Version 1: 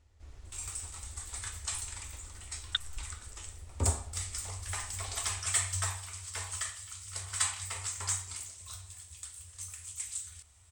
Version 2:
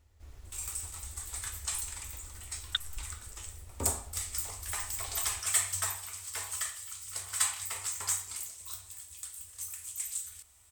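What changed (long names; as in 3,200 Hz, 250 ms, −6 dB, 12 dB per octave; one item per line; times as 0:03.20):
background: add parametric band 92 Hz −10 dB 1.1 octaves
master: remove Savitzky-Golay smoothing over 9 samples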